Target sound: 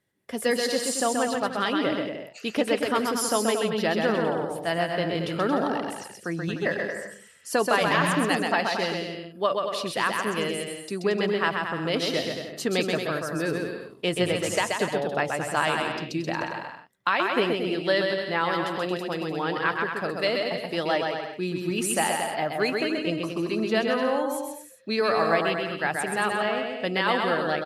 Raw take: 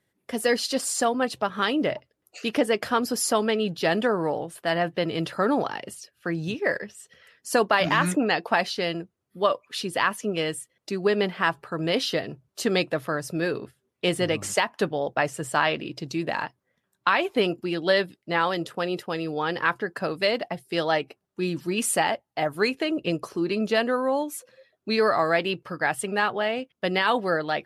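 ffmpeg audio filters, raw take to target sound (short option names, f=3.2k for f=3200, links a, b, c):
-af "aecho=1:1:130|227.5|300.6|355.5|396.6:0.631|0.398|0.251|0.158|0.1,volume=-2.5dB"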